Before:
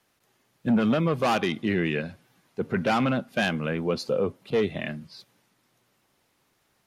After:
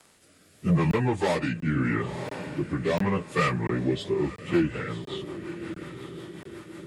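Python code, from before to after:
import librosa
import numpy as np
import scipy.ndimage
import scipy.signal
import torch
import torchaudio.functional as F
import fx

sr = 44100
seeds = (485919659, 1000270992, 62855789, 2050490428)

p1 = fx.pitch_bins(x, sr, semitones=-5.0)
p2 = fx.low_shelf(p1, sr, hz=190.0, db=-5.0)
p3 = p2 + fx.echo_diffused(p2, sr, ms=996, feedback_pct=41, wet_db=-15, dry=0)
p4 = fx.rotary_switch(p3, sr, hz=0.8, then_hz=5.5, switch_at_s=3.86)
p5 = fx.high_shelf(p4, sr, hz=4400.0, db=10.5)
p6 = fx.buffer_crackle(p5, sr, first_s=0.91, period_s=0.69, block=1024, kind='zero')
p7 = fx.band_squash(p6, sr, depth_pct=40)
y = p7 * 10.0 ** (4.5 / 20.0)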